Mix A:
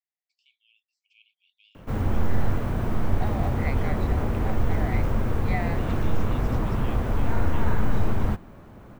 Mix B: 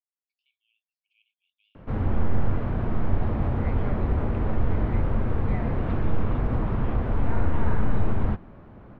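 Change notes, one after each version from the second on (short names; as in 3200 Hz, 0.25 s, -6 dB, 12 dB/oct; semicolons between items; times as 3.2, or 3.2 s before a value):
first voice -4.5 dB; second voice -7.5 dB; master: add air absorption 310 m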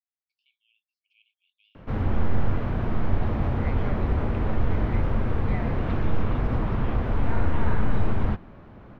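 master: add high shelf 2400 Hz +8 dB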